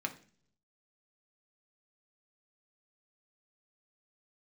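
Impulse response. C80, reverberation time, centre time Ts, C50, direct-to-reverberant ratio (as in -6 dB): 18.5 dB, 0.45 s, 7 ms, 14.0 dB, 3.0 dB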